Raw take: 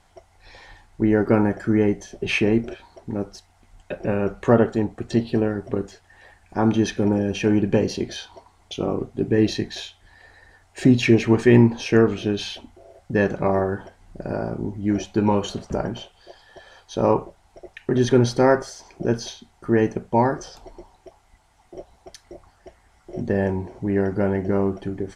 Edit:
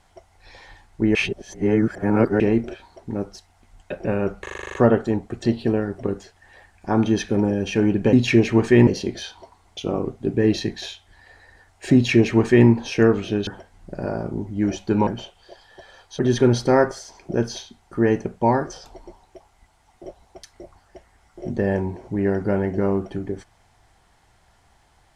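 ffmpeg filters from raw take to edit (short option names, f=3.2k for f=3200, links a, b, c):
-filter_complex "[0:a]asplit=16[a][b][c][d][e][f][g][h][i][j][k][l][m][n][o][p];[a]atrim=end=1.152[q];[b]atrim=start=1.148:end=2.402,asetpts=PTS-STARTPTS,areverse[r];[c]atrim=start=2.398:end=4.462[s];[d]atrim=start=4.418:end=4.462[t];[e]atrim=start=4.418:end=4.462[u];[f]atrim=start=4.418:end=4.462[v];[g]atrim=start=4.418:end=4.462[w];[h]atrim=start=4.418:end=4.462[x];[i]atrim=start=4.418:end=4.462[y];[j]atrim=start=4.418:end=4.462[z];[k]atrim=start=4.418:end=7.812[aa];[l]atrim=start=10.878:end=11.622[ab];[m]atrim=start=7.808:end=12.412[ac];[n]atrim=start=13.738:end=15.342[ad];[o]atrim=start=15.848:end=16.972[ae];[p]atrim=start=17.898[af];[q][r]acrossfade=d=0.004:c1=hsin:c2=hsin[ag];[ag][s]acrossfade=d=0.004:c1=hsin:c2=hsin[ah];[ah][t]acrossfade=d=0.004:c1=hsin:c2=hsin[ai];[ai][u]acrossfade=d=0.004:c1=hsin:c2=hsin[aj];[aj][v]acrossfade=d=0.004:c1=hsin:c2=hsin[ak];[ak][w]acrossfade=d=0.004:c1=hsin:c2=hsin[al];[al][x]acrossfade=d=0.004:c1=hsin:c2=hsin[am];[am][y]acrossfade=d=0.004:c1=hsin:c2=hsin[an];[an][z]acrossfade=d=0.004:c1=hsin:c2=hsin[ao];[ao][aa]acrossfade=d=0.004:c1=hsin:c2=hsin[ap];[ap][ab]acrossfade=d=0.004:c1=hsin:c2=hsin[aq];[aq][ac]acrossfade=d=0.004:c1=hsin:c2=hsin[ar];[ar][ad]acrossfade=d=0.004:c1=hsin:c2=hsin[as];[as][ae]acrossfade=d=0.004:c1=hsin:c2=hsin[at];[at][af]acrossfade=d=0.004:c1=hsin:c2=hsin"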